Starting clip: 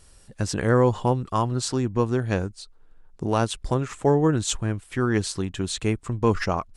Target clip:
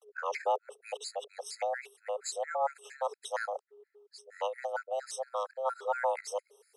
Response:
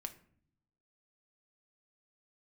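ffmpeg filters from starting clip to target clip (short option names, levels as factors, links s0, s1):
-af "areverse,afreqshift=400,afftfilt=real='re*gt(sin(2*PI*4.3*pts/sr)*(1-2*mod(floor(b*sr/1024/1300),2)),0)':imag='im*gt(sin(2*PI*4.3*pts/sr)*(1-2*mod(floor(b*sr/1024/1300),2)),0)':win_size=1024:overlap=0.75,volume=0.376"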